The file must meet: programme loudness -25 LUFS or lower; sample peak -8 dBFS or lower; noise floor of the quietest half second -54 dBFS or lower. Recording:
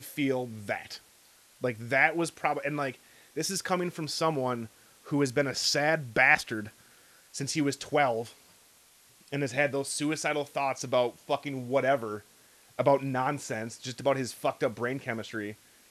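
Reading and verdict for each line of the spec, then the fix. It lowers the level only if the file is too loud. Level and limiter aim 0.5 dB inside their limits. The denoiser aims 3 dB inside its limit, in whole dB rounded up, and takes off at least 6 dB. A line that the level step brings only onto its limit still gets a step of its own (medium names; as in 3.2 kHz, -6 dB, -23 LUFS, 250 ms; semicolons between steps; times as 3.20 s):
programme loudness -29.5 LUFS: pass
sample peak -7.0 dBFS: fail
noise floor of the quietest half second -60 dBFS: pass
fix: peak limiter -8.5 dBFS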